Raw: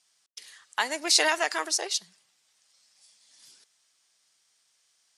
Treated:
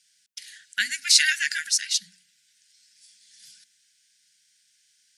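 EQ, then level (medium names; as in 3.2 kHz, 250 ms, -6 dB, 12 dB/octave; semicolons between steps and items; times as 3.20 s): high-pass 93 Hz; brick-wall FIR band-stop 240–1400 Hz; hum notches 60/120/180/240 Hz; +4.5 dB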